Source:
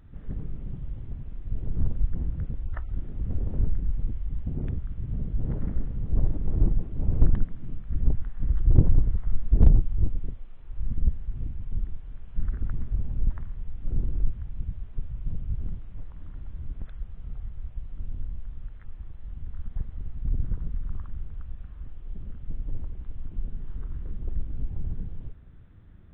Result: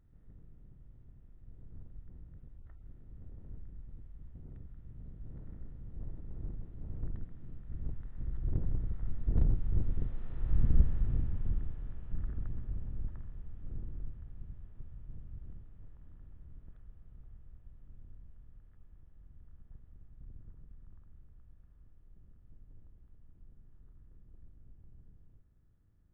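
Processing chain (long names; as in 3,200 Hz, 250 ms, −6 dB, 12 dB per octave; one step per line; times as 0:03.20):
compressor on every frequency bin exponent 0.6
source passing by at 0:10.67, 9 m/s, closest 4.8 metres
level −5 dB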